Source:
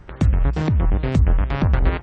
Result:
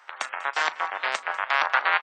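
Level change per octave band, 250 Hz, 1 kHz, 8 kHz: -31.5 dB, +7.0 dB, no reading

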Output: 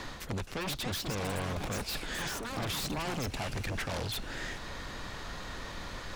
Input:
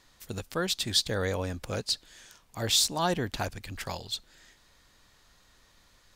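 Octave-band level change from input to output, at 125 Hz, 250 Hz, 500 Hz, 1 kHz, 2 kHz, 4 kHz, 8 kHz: -0.5 dB, -1.5 dB, -5.0 dB, -2.5 dB, +1.0 dB, -8.0 dB, -8.0 dB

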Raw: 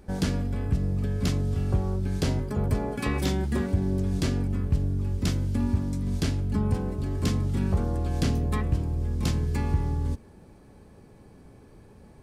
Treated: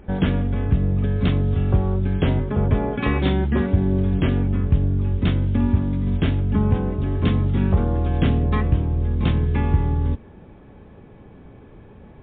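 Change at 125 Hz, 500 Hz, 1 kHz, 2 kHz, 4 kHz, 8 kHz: +6.5 dB, +6.5 dB, +6.5 dB, +6.5 dB, +2.0 dB, under -40 dB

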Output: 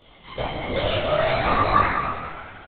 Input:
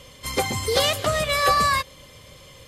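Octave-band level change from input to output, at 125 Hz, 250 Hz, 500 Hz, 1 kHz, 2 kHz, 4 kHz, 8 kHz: +2.0 dB, +4.0 dB, +1.0 dB, +1.0 dB, -1.0 dB, -6.5 dB, under -40 dB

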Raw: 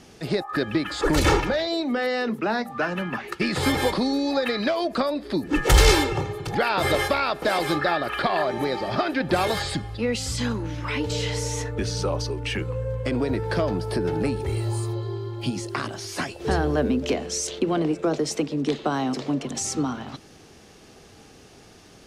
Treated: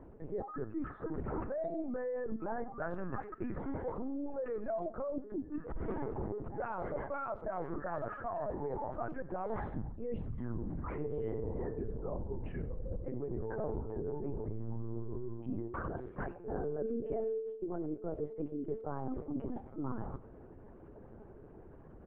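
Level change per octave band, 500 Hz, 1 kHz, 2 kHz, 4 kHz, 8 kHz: -12.5 dB, -15.5 dB, -23.0 dB, under -40 dB, under -40 dB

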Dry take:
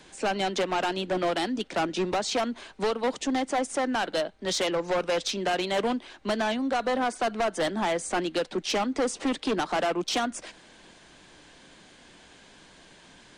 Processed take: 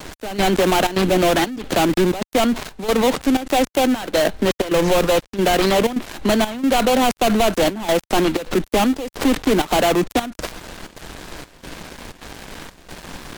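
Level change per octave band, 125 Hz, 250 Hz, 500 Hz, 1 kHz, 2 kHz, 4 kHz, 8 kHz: +14.5 dB, +11.5 dB, +9.5 dB, +8.0 dB, +7.5 dB, +7.5 dB, +8.0 dB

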